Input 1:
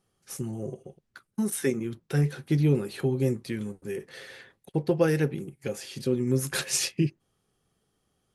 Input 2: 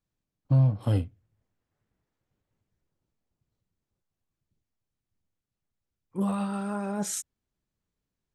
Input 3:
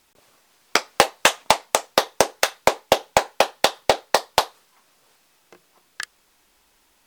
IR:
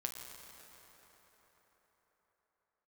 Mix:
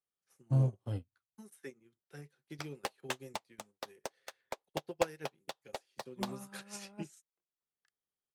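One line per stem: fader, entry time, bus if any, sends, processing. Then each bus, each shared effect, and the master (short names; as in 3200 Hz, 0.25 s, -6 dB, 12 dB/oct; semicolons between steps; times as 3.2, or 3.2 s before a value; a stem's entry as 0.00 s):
-4.0 dB, 0.00 s, no send, low shelf 330 Hz -11 dB; three-band squash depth 40%
-6.5 dB, 0.00 s, no send, dry
-17.0 dB, 1.85 s, no send, dry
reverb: off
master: upward expander 2.5:1, over -45 dBFS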